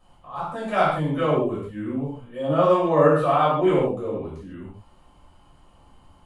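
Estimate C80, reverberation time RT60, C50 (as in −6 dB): 5.0 dB, non-exponential decay, 1.0 dB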